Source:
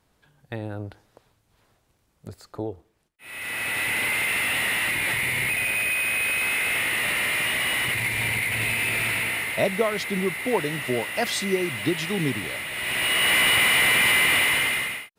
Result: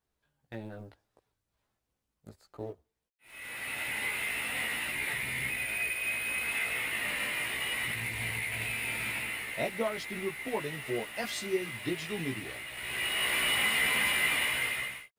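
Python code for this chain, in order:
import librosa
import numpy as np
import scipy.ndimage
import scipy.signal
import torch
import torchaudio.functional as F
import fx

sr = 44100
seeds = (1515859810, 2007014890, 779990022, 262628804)

y = fx.law_mismatch(x, sr, coded='A')
y = fx.chorus_voices(y, sr, voices=4, hz=0.19, base_ms=16, depth_ms=2.6, mix_pct=45)
y = y * librosa.db_to_amplitude(-5.5)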